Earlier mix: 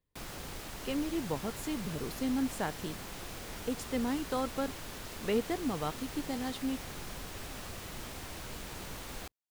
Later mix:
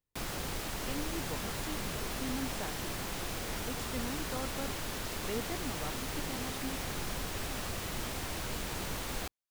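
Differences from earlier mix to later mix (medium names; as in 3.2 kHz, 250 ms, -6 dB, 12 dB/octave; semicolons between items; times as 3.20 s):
speech -7.5 dB; background +5.5 dB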